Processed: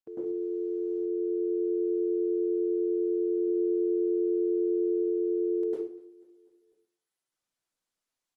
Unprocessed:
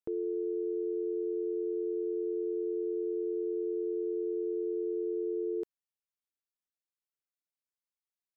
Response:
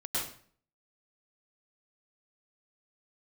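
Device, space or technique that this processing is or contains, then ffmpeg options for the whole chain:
far-field microphone of a smart speaker: -filter_complex "[0:a]asettb=1/sr,asplit=3[a][b][c];[a]atrim=end=3.374[d];[b]atrim=start=3.37:end=4.92,asetpts=PTS-STARTPTS,afade=t=in:d=0.004:c=qsin,afade=t=out:st=1.546:d=0.004:c=qsin,equalizer=f=270:w=2.5:g=3[e];[c]atrim=start=4.916[f];[d][e]acrossfade=d=0.004:c1=hsin:c2=qsin[g];[g][f]acrossfade=d=0.004:c1=qsin:c2=hsin,aecho=1:1:246|492|738|984:0.0708|0.0389|0.0214|0.0118[h];[1:a]atrim=start_sample=2205[i];[h][i]afir=irnorm=-1:irlink=0,highpass=160,dynaudnorm=f=220:g=11:m=4.5dB,volume=-2dB" -ar 48000 -c:a libopus -b:a 20k

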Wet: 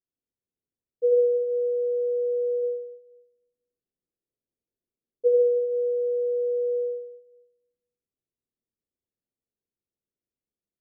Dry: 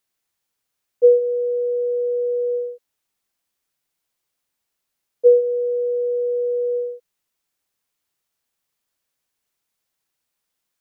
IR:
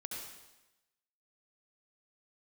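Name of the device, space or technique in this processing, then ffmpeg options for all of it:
next room: -filter_complex "[0:a]lowpass=f=490:w=0.5412,lowpass=f=490:w=1.3066[a];[1:a]atrim=start_sample=2205[b];[a][b]afir=irnorm=-1:irlink=0,asplit=3[c][d][e];[c]afade=t=out:st=2.62:d=0.02[f];[d]equalizer=f=420:w=1.5:g=3,afade=t=in:st=2.62:d=0.02,afade=t=out:st=5.27:d=0.02[g];[e]afade=t=in:st=5.27:d=0.02[h];[f][g][h]amix=inputs=3:normalize=0,volume=-2.5dB"

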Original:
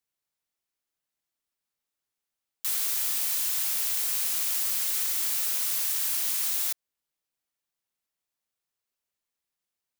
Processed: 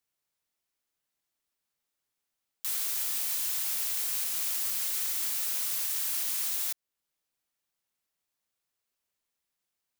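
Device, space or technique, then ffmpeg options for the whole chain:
soft clipper into limiter: -af "asoftclip=type=tanh:threshold=-18dB,alimiter=level_in=0.5dB:limit=-24dB:level=0:latency=1:release=392,volume=-0.5dB,volume=2dB"

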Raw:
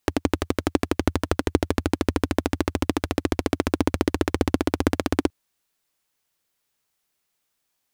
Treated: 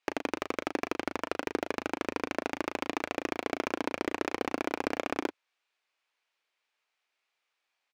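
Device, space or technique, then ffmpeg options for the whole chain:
megaphone: -filter_complex "[0:a]highpass=570,lowpass=3.8k,equalizer=f=2.4k:t=o:w=0.38:g=5,asoftclip=type=hard:threshold=-16.5dB,asplit=2[a][b];[b]adelay=36,volume=-8dB[c];[a][c]amix=inputs=2:normalize=0,volume=-1dB"

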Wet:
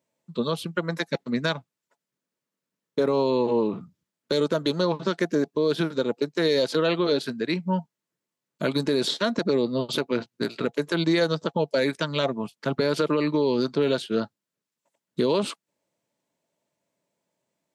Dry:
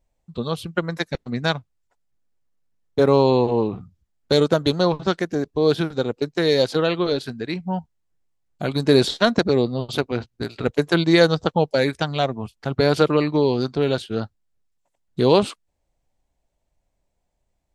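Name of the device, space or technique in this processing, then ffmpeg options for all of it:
PA system with an anti-feedback notch: -af "highpass=f=160:w=0.5412,highpass=f=160:w=1.3066,asuperstop=centerf=760:order=12:qfactor=6.1,alimiter=limit=-15dB:level=0:latency=1:release=134,volume=1.5dB"

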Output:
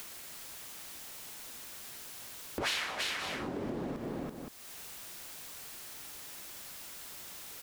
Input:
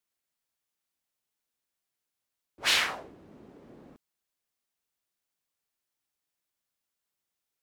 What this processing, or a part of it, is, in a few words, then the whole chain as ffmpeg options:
upward and downward compression: -af "aecho=1:1:148|333|520:0.141|0.447|0.112,acompressor=mode=upward:threshold=-31dB:ratio=2.5,acompressor=threshold=-42dB:ratio=5,volume=8.5dB"

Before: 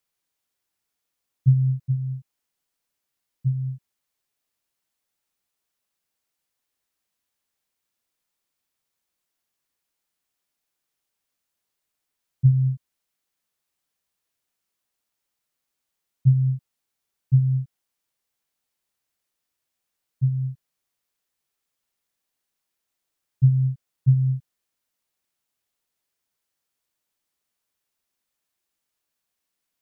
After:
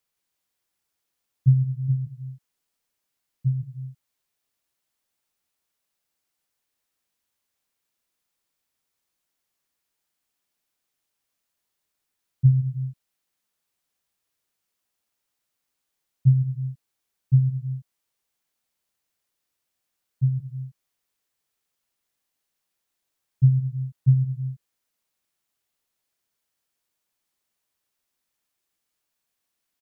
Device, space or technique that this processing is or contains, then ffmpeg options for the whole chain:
ducked delay: -filter_complex "[0:a]asplit=3[a][b][c];[b]adelay=164,volume=-6dB[d];[c]apad=whole_len=1322074[e];[d][e]sidechaincompress=threshold=-22dB:ratio=8:attack=16:release=349[f];[a][f]amix=inputs=2:normalize=0"

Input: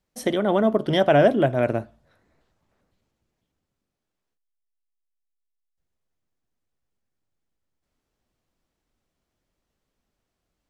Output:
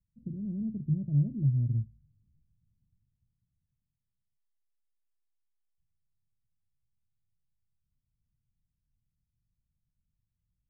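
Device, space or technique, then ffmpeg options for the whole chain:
the neighbour's flat through the wall: -af "lowpass=f=160:w=0.5412,lowpass=f=160:w=1.3066,equalizer=f=120:t=o:w=0.77:g=4.5"

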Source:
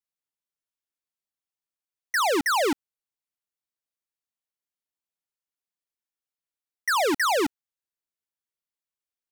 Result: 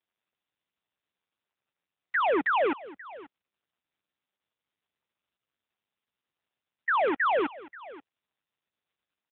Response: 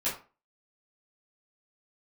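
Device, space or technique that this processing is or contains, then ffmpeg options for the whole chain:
satellite phone: -filter_complex "[0:a]asettb=1/sr,asplit=3[a][b][c];[a]atrim=end=2.174[d];[b]atrim=start=2.17:end=2.67,asetpts=PTS-STARTPTS,afade=t=in:d=0.004:c=qsin,afade=t=out:st=0.496:d=0.004:c=qsin,lowshelf=f=130:t=q:w=3:g=-11.5[e];[c]atrim=start=2.666[f];[d][e]acrossfade=d=0.004:c1=hsin:c2=qsin[g];[g][f]acrossfade=d=0.004:c1=qsin:c2=hsin,highpass=380,lowpass=3.3k,aecho=1:1:534:0.119" -ar 8000 -c:a libopencore_amrnb -b:a 6700

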